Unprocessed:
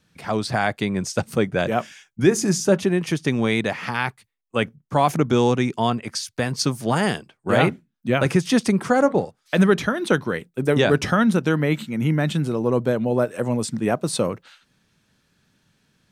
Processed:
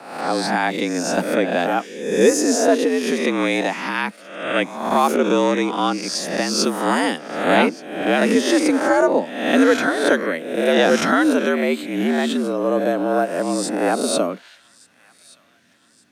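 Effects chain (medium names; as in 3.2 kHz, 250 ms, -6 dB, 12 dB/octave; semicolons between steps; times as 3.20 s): reverse spectral sustain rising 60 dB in 0.79 s; frequency shift +79 Hz; on a send: feedback echo behind a high-pass 1174 ms, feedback 49%, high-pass 1.8 kHz, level -22 dB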